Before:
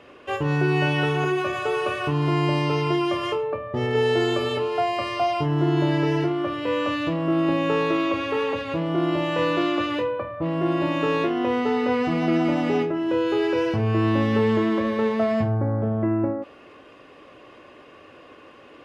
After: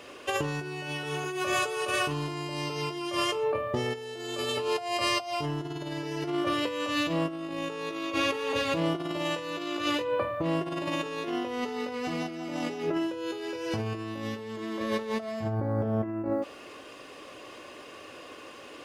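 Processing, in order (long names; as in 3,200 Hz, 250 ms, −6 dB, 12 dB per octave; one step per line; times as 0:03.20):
bass and treble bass −4 dB, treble +15 dB
compressor whose output falls as the input rises −27 dBFS, ratio −0.5
level −3 dB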